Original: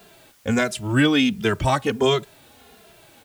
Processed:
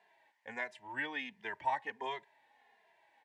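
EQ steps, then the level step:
pair of resonant band-passes 1,300 Hz, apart 1 octave
−6.0 dB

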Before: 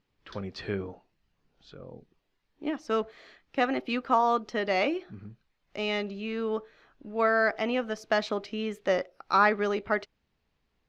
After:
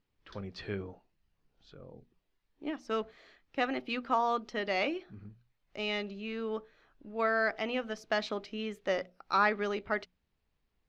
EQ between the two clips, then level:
low-shelf EQ 91 Hz +6.5 dB
dynamic equaliser 3,200 Hz, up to +4 dB, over −42 dBFS, Q 0.7
mains-hum notches 60/120/180/240 Hz
−6.0 dB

